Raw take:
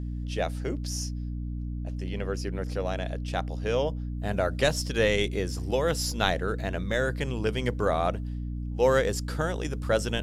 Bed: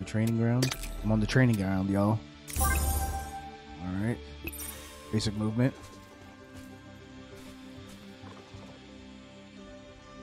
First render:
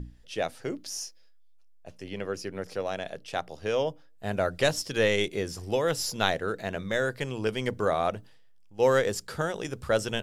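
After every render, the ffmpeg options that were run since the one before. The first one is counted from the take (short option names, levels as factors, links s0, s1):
-af "bandreject=f=60:t=h:w=6,bandreject=f=120:t=h:w=6,bandreject=f=180:t=h:w=6,bandreject=f=240:t=h:w=6,bandreject=f=300:t=h:w=6"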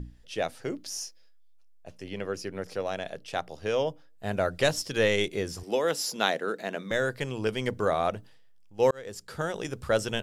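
-filter_complex "[0:a]asettb=1/sr,asplit=3[s0][s1][s2];[s0]atrim=end=5.634[s3];[s1]atrim=start=5.63:end=6.91,asetpts=PTS-STARTPTS,afade=t=in:d=0.004:c=qsin,afade=t=out:st=1.276:d=0.004:c=qsin,highpass=f=190:w=0.5412,highpass=f=190:w=1.3066[s4];[s2]atrim=start=6.906[s5];[s3][s4]acrossfade=d=0.004:c1=hsin:c2=qsin[s6];[s6][s5]acrossfade=d=0.004:c1=qsin:c2=hsin,asplit=2[s7][s8];[s7]atrim=end=8.91,asetpts=PTS-STARTPTS,afade=t=out:st=8.906:d=0.004:c=hsin[s9];[s8]atrim=start=8.91,asetpts=PTS-STARTPTS,afade=t=in:d=0.64[s10];[s9][s10]concat=n=2:v=0:a=1"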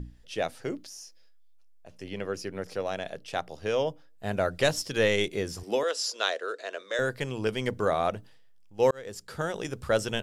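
-filter_complex "[0:a]asettb=1/sr,asplit=3[s0][s1][s2];[s0]atrim=end=0.784[s3];[s1]atrim=start=0.78:end=1.95,asetpts=PTS-STARTPTS,afade=t=in:d=0.004:c=qsin,afade=t=out:st=1.166:d=0.004:c=qsin,acompressor=threshold=0.00631:ratio=3:attack=3.2:release=140:knee=1:detection=peak[s4];[s2]atrim=start=1.946[s5];[s3][s4]acrossfade=d=0.004:c1=hsin:c2=qsin[s6];[s6][s5]acrossfade=d=0.004:c1=qsin:c2=hsin,asettb=1/sr,asplit=3[s7][s8][s9];[s7]atrim=end=5.834[s10];[s8]atrim=start=5.83:end=6.99,asetpts=PTS-STARTPTS,afade=t=in:d=0.004:c=qsin,afade=t=out:st=1.156:d=0.004:c=qsin,highpass=f=430:w=0.5412,highpass=f=430:w=1.3066,equalizer=f=820:t=q:w=4:g=-10,equalizer=f=2100:t=q:w=4:g=-5,equalizer=f=4700:t=q:w=4:g=3,lowpass=f=9000:w=0.5412,lowpass=f=9000:w=1.3066[s11];[s9]atrim=start=6.986[s12];[s10][s11]acrossfade=d=0.004:c1=hsin:c2=qsin[s13];[s13][s12]acrossfade=d=0.004:c1=qsin:c2=hsin"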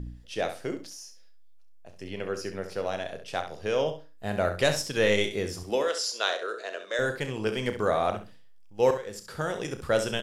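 -filter_complex "[0:a]asplit=2[s0][s1];[s1]adelay=33,volume=0.282[s2];[s0][s2]amix=inputs=2:normalize=0,aecho=1:1:67|134|201:0.335|0.067|0.0134"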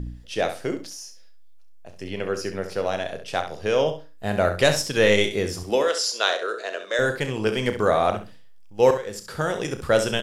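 -af "volume=1.88"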